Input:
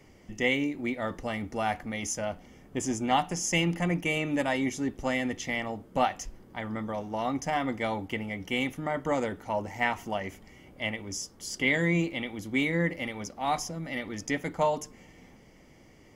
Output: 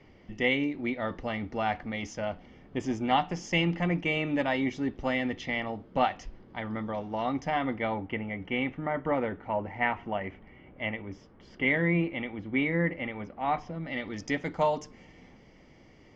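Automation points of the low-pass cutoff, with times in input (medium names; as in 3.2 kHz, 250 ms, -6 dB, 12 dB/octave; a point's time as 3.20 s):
low-pass 24 dB/octave
7.43 s 4.4 kHz
8.00 s 2.7 kHz
13.54 s 2.7 kHz
14.20 s 5.4 kHz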